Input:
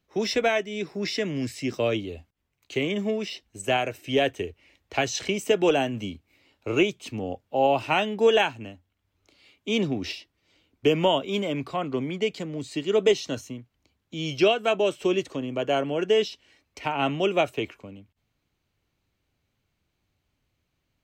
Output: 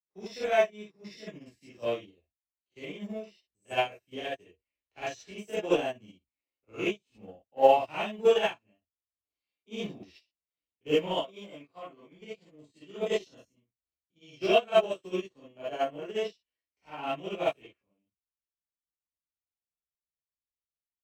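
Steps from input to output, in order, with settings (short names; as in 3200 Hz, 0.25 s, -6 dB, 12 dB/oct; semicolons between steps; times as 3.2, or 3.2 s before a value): stepped spectrum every 50 ms; 11.16–12.14 HPF 260 Hz 6 dB/oct; non-linear reverb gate 90 ms rising, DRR -8 dB; in parallel at -11.5 dB: hard clip -22 dBFS, distortion -4 dB; on the sum: short-mantissa float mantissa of 6-bit; upward expander 2.5:1, over -33 dBFS; gain -6 dB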